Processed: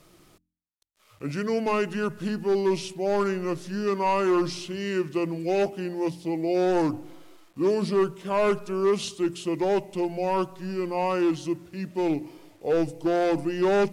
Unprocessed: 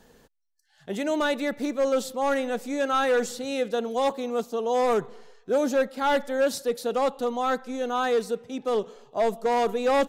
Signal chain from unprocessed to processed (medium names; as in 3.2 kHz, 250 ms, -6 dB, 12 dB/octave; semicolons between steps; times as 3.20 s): bit crusher 10-bit; hum notches 60/120/180/240/300/360/420 Hz; wide varispeed 0.724×